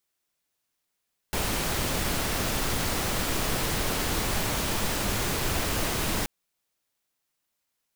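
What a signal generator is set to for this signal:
noise pink, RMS −27.5 dBFS 4.93 s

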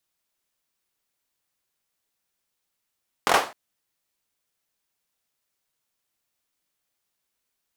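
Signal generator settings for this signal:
synth clap length 0.26 s, apart 23 ms, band 760 Hz, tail 0.33 s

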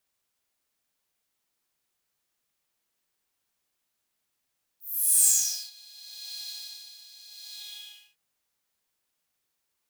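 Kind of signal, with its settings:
subtractive patch with tremolo G#5, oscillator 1 saw, detune 14 cents, sub −11 dB, noise −5.5 dB, filter highpass, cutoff 2,700 Hz, Q 6.2, filter envelope 2.5 octaves, filter decay 0.90 s, filter sustain 25%, attack 459 ms, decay 0.45 s, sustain −22.5 dB, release 0.67 s, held 2.69 s, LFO 0.76 Hz, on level 11.5 dB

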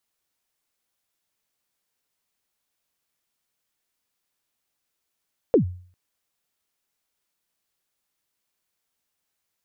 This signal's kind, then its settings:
synth kick length 0.40 s, from 540 Hz, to 90 Hz, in 107 ms, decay 0.48 s, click off, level −10 dB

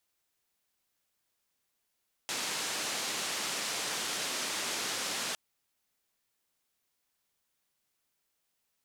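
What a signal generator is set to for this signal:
band-limited noise 200–7,200 Hz, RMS −35 dBFS 3.06 s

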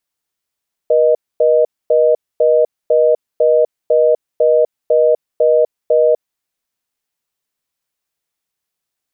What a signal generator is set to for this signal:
call progress tone reorder tone, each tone −11 dBFS 5.32 s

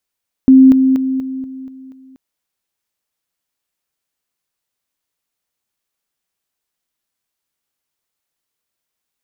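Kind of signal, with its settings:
level staircase 263 Hz −2.5 dBFS, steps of −6 dB, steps 7, 0.24 s 0.00 s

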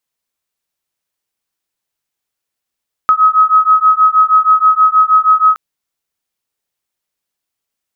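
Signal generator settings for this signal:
two tones that beat 1,270 Hz, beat 6.3 Hz, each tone −9.5 dBFS 2.47 s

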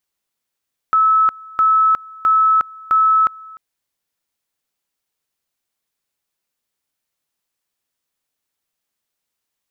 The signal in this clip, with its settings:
tone at two levels in turn 1,300 Hz −10 dBFS, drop 24 dB, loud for 0.36 s, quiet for 0.30 s, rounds 4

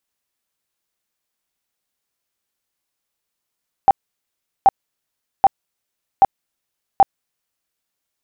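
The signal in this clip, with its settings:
tone bursts 783 Hz, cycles 22, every 0.78 s, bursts 5, −5.5 dBFS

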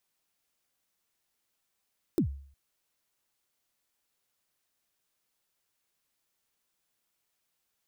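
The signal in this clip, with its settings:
synth kick length 0.36 s, from 390 Hz, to 69 Hz, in 96 ms, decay 0.53 s, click on, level −19.5 dB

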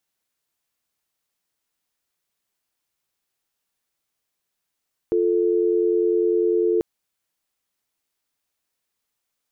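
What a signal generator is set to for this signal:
call progress tone dial tone, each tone −19.5 dBFS 1.69 s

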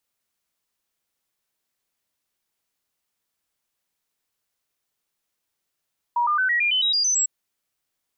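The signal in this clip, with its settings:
stepped sweep 956 Hz up, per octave 3, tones 10, 0.11 s, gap 0.00 s −18 dBFS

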